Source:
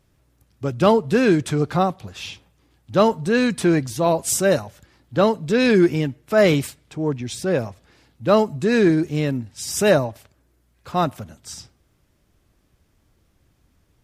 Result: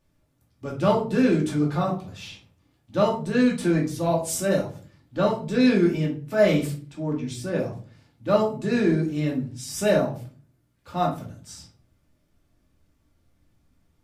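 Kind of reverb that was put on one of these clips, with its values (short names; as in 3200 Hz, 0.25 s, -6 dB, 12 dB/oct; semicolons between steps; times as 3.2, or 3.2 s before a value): shoebox room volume 270 m³, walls furnished, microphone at 2.5 m; gain -10 dB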